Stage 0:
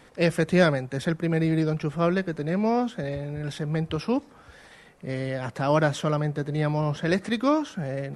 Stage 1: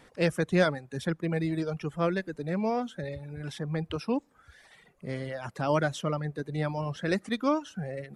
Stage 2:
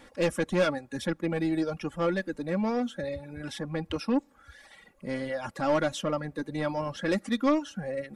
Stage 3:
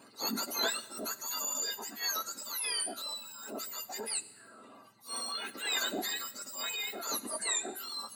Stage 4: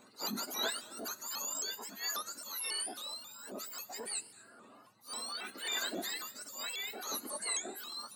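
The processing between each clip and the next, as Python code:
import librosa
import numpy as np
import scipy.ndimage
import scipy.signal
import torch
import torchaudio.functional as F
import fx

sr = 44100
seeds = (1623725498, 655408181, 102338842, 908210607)

y1 = fx.dereverb_blind(x, sr, rt60_s=1.1)
y1 = y1 * librosa.db_to_amplitude(-3.5)
y2 = 10.0 ** (-22.5 / 20.0) * np.tanh(y1 / 10.0 ** (-22.5 / 20.0))
y2 = y2 + 0.6 * np.pad(y2, (int(3.6 * sr / 1000.0), 0))[:len(y2)]
y2 = y2 * librosa.db_to_amplitude(2.0)
y3 = fx.octave_mirror(y2, sr, pivot_hz=1500.0)
y3 = fx.transient(y3, sr, attack_db=-8, sustain_db=3)
y3 = fx.rev_schroeder(y3, sr, rt60_s=1.2, comb_ms=32, drr_db=15.5)
y4 = y3 + 10.0 ** (-22.5 / 20.0) * np.pad(y3, (int(227 * sr / 1000.0), 0))[:len(y3)]
y4 = fx.vibrato_shape(y4, sr, shape='saw_up', rate_hz=3.7, depth_cents=160.0)
y4 = y4 * librosa.db_to_amplitude(-3.5)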